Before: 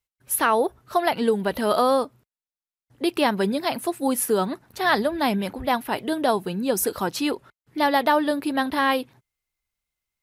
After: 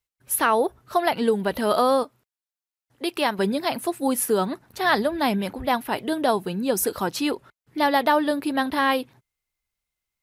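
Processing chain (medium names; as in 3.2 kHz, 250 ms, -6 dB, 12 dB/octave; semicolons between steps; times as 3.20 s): 2.03–3.39 s: bass shelf 340 Hz -9.5 dB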